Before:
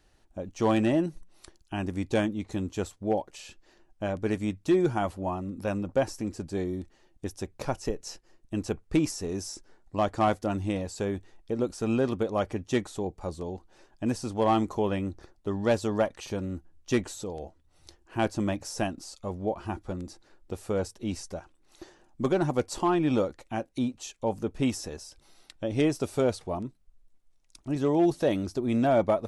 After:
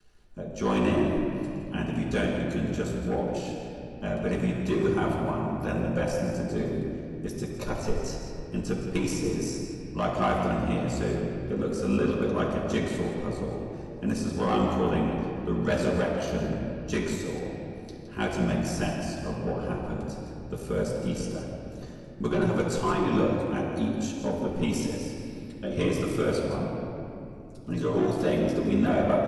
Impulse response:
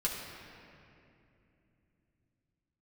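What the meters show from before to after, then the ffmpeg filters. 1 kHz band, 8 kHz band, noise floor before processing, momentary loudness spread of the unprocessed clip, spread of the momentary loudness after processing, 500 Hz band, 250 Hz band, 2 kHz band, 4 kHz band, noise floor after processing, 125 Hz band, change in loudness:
0.0 dB, +0.5 dB, −64 dBFS, 14 LU, 11 LU, +0.5 dB, +1.5 dB, +3.0 dB, +1.5 dB, −41 dBFS, +3.5 dB, +1.0 dB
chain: -filter_complex "[0:a]aeval=exprs='val(0)*sin(2*PI*28*n/s)':channel_layout=same,acrossover=split=130|830|2400[link_01][link_02][link_03][link_04];[link_02]asoftclip=type=tanh:threshold=-23.5dB[link_05];[link_01][link_05][link_03][link_04]amix=inputs=4:normalize=0,aecho=1:1:165:0.266[link_06];[1:a]atrim=start_sample=2205[link_07];[link_06][link_07]afir=irnorm=-1:irlink=0"

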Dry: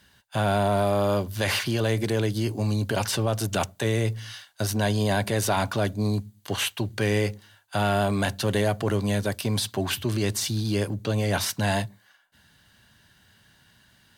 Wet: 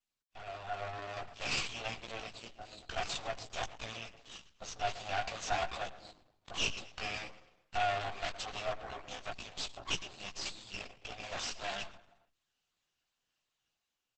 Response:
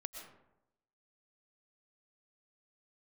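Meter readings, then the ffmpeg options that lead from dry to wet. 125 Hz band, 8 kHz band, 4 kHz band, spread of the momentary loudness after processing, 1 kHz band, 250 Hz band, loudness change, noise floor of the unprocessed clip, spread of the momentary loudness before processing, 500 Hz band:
−26.0 dB, −13.0 dB, −8.5 dB, 13 LU, −9.0 dB, −26.0 dB, −13.5 dB, −61 dBFS, 5 LU, −16.5 dB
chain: -filter_complex "[0:a]afftfilt=real='re*pow(10,7/40*sin(2*PI*(1.1*log(max(b,1)*sr/1024/100)/log(2)-(-2.7)*(pts-256)/sr)))':imag='im*pow(10,7/40*sin(2*PI*(1.1*log(max(b,1)*sr/1024/100)/log(2)-(-2.7)*(pts-256)/sr)))':win_size=1024:overlap=0.75,aresample=16000,asoftclip=type=hard:threshold=-19.5dB,aresample=44100,aderivative,bandreject=frequency=60:width_type=h:width=6,bandreject=frequency=120:width_type=h:width=6,bandreject=frequency=180:width_type=h:width=6,bandreject=frequency=240:width_type=h:width=6,bandreject=frequency=300:width_type=h:width=6,bandreject=frequency=360:width_type=h:width=6,bandreject=frequency=420:width_type=h:width=6,afwtdn=0.00355,asplit=3[link_01][link_02][link_03];[link_01]bandpass=frequency=730:width_type=q:width=8,volume=0dB[link_04];[link_02]bandpass=frequency=1090:width_type=q:width=8,volume=-6dB[link_05];[link_03]bandpass=frequency=2440:width_type=q:width=8,volume=-9dB[link_06];[link_04][link_05][link_06]amix=inputs=3:normalize=0,asubboost=boost=9.5:cutoff=64,asplit=2[link_07][link_08];[link_08]adelay=115,lowpass=frequency=2900:poles=1,volume=-13dB,asplit=2[link_09][link_10];[link_10]adelay=115,lowpass=frequency=2900:poles=1,volume=0.45,asplit=2[link_11][link_12];[link_12]adelay=115,lowpass=frequency=2900:poles=1,volume=0.45,asplit=2[link_13][link_14];[link_14]adelay=115,lowpass=frequency=2900:poles=1,volume=0.45[link_15];[link_09][link_11][link_13][link_15]amix=inputs=4:normalize=0[link_16];[link_07][link_16]amix=inputs=2:normalize=0,aeval=exprs='max(val(0),0)':channel_layout=same,flanger=delay=15:depth=2.9:speed=0.67,dynaudnorm=framelen=160:gausssize=11:maxgain=13.5dB,volume=12dB" -ar 48000 -c:a libopus -b:a 10k

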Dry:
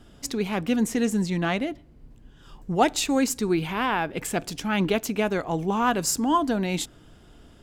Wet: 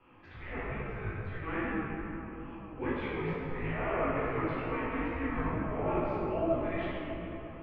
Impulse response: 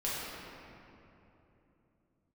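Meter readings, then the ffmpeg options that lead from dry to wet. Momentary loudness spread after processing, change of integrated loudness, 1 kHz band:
10 LU, −9.5 dB, −10.0 dB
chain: -filter_complex "[0:a]areverse,acompressor=threshold=-31dB:ratio=12,areverse[link_01];[1:a]atrim=start_sample=2205,asetrate=27783,aresample=44100[link_02];[link_01][link_02]afir=irnorm=-1:irlink=0,flanger=delay=15.5:depth=3.5:speed=2.3,highpass=frequency=460:width_type=q:width=0.5412,highpass=frequency=460:width_type=q:width=1.307,lowpass=frequency=2800:width_type=q:width=0.5176,lowpass=frequency=2800:width_type=q:width=0.7071,lowpass=frequency=2800:width_type=q:width=1.932,afreqshift=-370"

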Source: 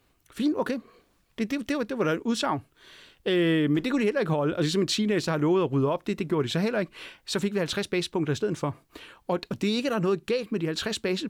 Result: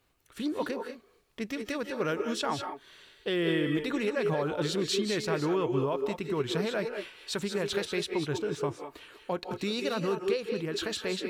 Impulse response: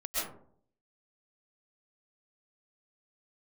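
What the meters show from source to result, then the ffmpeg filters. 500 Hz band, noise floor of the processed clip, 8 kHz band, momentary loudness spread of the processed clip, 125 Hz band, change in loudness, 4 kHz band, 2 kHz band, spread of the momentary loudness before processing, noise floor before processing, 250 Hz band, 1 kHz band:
−3.0 dB, −64 dBFS, −3.0 dB, 10 LU, −6.5 dB, −4.5 dB, −3.0 dB, −3.0 dB, 10 LU, −67 dBFS, −6.0 dB, −3.0 dB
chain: -filter_complex "[0:a]asplit=2[link_01][link_02];[link_02]highpass=frequency=220:width=0.5412,highpass=frequency=220:width=1.3066[link_03];[1:a]atrim=start_sample=2205,atrim=end_sample=6174,asetrate=29988,aresample=44100[link_04];[link_03][link_04]afir=irnorm=-1:irlink=0,volume=-8.5dB[link_05];[link_01][link_05]amix=inputs=2:normalize=0,volume=-6dB"

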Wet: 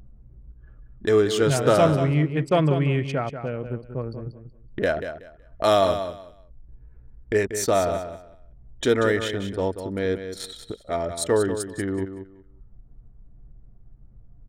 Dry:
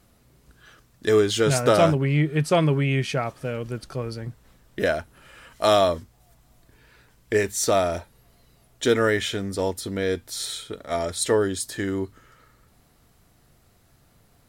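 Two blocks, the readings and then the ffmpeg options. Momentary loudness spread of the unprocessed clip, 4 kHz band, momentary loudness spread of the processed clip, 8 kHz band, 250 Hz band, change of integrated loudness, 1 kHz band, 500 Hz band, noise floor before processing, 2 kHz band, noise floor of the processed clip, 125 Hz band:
13 LU, −3.5 dB, 16 LU, −3.5 dB, +0.5 dB, 0.0 dB, 0.0 dB, +0.5 dB, −60 dBFS, −2.0 dB, −51 dBFS, 0.0 dB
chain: -filter_complex "[0:a]anlmdn=63.1,adynamicequalizer=threshold=0.00447:dfrequency=2200:dqfactor=4.4:tfrequency=2200:tqfactor=4.4:attack=5:release=100:ratio=0.375:range=1.5:mode=cutabove:tftype=bell,acrossover=split=2600[link_01][link_02];[link_01]acompressor=mode=upward:threshold=-28dB:ratio=2.5[link_03];[link_03][link_02]amix=inputs=2:normalize=0,highshelf=frequency=3800:gain=-10,crystalizer=i=1:c=0,asplit=2[link_04][link_05];[link_05]aecho=0:1:187|374|561:0.335|0.0703|0.0148[link_06];[link_04][link_06]amix=inputs=2:normalize=0"

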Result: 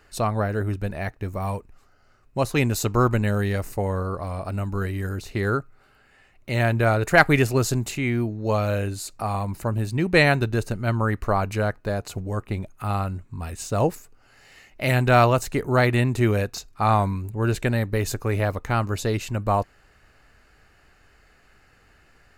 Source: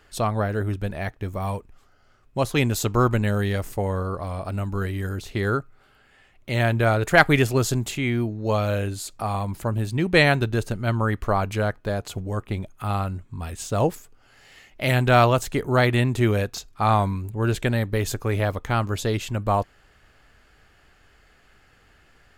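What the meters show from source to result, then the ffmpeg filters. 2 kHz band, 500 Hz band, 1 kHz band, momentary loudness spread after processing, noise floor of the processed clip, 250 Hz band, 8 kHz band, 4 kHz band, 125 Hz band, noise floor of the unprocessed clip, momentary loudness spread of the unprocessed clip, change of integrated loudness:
0.0 dB, 0.0 dB, 0.0 dB, 12 LU, −58 dBFS, 0.0 dB, 0.0 dB, −2.5 dB, 0.0 dB, −58 dBFS, 12 LU, 0.0 dB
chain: -af "bandreject=frequency=3300:width=6.3"

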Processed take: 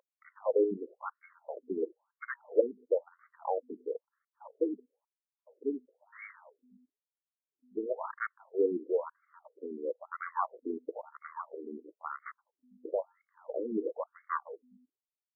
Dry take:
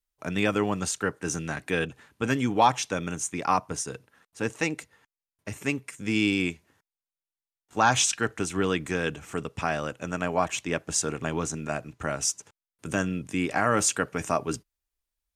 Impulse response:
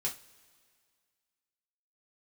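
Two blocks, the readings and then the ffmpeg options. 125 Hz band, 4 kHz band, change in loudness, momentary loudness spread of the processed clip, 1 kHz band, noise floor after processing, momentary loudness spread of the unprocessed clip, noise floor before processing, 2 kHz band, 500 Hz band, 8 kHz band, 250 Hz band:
below −25 dB, below −40 dB, −8.5 dB, 18 LU, −12.0 dB, below −85 dBFS, 12 LU, below −85 dBFS, −16.0 dB, −2.5 dB, below −40 dB, −11.0 dB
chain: -filter_complex "[0:a]afwtdn=0.0251,asplit=2[link_01][link_02];[link_02]acrusher=samples=17:mix=1:aa=0.000001,volume=-5dB[link_03];[link_01][link_03]amix=inputs=2:normalize=0,aeval=exprs='val(0)+0.0158*(sin(2*PI*50*n/s)+sin(2*PI*2*50*n/s)/2+sin(2*PI*3*50*n/s)/3+sin(2*PI*4*50*n/s)/4+sin(2*PI*5*50*n/s)/5)':channel_layout=same,highpass=200,equalizer=frequency=270:width_type=q:width=4:gain=-7,equalizer=frequency=490:width_type=q:width=4:gain=7,equalizer=frequency=740:width_type=q:width=4:gain=-7,equalizer=frequency=1700:width_type=q:width=4:gain=-5,equalizer=frequency=3000:width_type=q:width=4:gain=3,lowpass=frequency=8600:width=0.5412,lowpass=frequency=8600:width=1.3066,afftfilt=real='re*between(b*sr/1024,300*pow(1600/300,0.5+0.5*sin(2*PI*1*pts/sr))/1.41,300*pow(1600/300,0.5+0.5*sin(2*PI*1*pts/sr))*1.41)':imag='im*between(b*sr/1024,300*pow(1600/300,0.5+0.5*sin(2*PI*1*pts/sr))/1.41,300*pow(1600/300,0.5+0.5*sin(2*PI*1*pts/sr))*1.41)':win_size=1024:overlap=0.75,volume=-2.5dB"

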